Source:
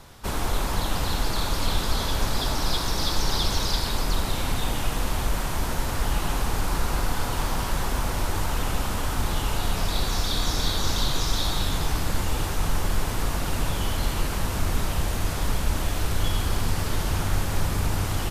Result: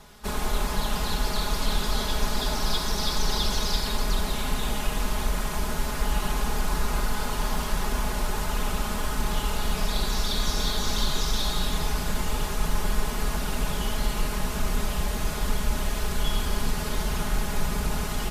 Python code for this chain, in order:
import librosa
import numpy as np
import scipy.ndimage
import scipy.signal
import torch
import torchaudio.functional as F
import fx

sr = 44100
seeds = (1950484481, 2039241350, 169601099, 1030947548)

y = fx.cheby_harmonics(x, sr, harmonics=(5, 7), levels_db=(-30, -33), full_scale_db=-10.0)
y = y + 0.77 * np.pad(y, (int(4.8 * sr / 1000.0), 0))[:len(y)]
y = y * librosa.db_to_amplitude(-3.5)